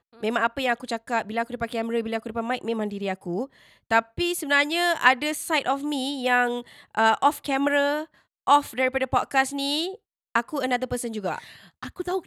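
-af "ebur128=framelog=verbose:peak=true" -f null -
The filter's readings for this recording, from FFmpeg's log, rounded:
Integrated loudness:
  I:         -24.8 LUFS
  Threshold: -35.1 LUFS
Loudness range:
  LRA:         4.6 LU
  Threshold: -44.5 LUFS
  LRA low:   -27.6 LUFS
  LRA high:  -23.0 LUFS
True peak:
  Peak:       -2.5 dBFS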